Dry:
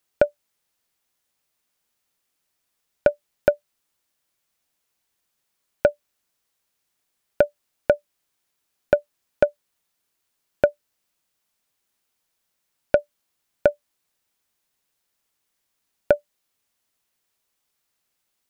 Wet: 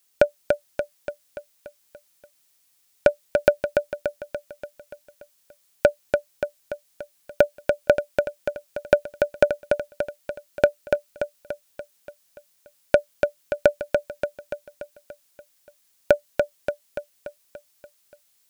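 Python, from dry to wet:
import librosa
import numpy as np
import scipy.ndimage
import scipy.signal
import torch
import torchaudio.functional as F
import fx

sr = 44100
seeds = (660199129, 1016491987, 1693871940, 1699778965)

y = fx.high_shelf(x, sr, hz=2800.0, db=11.5)
y = fx.echo_feedback(y, sr, ms=289, feedback_pct=55, wet_db=-4.5)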